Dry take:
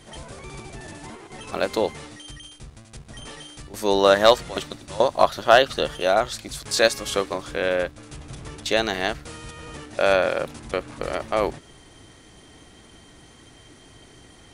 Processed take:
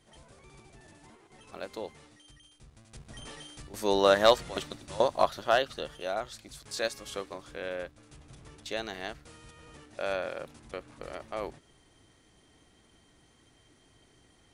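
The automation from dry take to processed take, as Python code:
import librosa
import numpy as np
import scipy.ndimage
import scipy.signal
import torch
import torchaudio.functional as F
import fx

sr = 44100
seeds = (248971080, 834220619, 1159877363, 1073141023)

y = fx.gain(x, sr, db=fx.line((2.5, -16.0), (3.03, -6.0), (5.07, -6.0), (5.85, -13.5)))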